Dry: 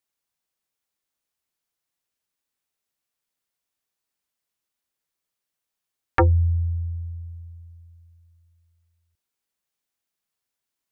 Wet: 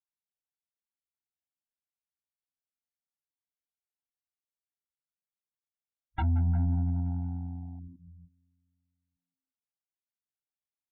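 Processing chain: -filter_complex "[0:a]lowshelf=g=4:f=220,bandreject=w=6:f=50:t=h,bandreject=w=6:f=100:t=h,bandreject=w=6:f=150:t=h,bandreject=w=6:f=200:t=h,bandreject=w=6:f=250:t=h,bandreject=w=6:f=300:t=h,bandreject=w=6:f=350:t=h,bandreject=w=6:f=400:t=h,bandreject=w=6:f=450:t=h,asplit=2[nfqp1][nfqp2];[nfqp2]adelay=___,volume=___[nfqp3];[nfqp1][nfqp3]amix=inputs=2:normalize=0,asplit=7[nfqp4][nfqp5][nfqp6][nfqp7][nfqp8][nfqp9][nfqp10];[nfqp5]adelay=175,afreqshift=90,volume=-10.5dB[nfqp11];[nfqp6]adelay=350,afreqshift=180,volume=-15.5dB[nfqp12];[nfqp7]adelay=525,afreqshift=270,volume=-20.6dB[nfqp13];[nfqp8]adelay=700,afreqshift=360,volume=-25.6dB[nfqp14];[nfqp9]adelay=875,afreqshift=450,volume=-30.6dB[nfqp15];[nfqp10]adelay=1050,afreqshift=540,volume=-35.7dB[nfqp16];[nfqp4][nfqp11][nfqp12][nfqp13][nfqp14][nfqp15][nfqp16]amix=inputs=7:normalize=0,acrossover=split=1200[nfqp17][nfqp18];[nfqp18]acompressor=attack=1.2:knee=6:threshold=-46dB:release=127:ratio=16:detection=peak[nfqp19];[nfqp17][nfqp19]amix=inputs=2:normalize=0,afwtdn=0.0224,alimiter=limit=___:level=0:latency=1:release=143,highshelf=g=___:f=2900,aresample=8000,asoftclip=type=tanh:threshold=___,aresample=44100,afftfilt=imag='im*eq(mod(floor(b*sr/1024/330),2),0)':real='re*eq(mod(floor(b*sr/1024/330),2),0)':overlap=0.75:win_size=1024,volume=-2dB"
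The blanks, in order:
15, -3dB, -9dB, -9.5, -21.5dB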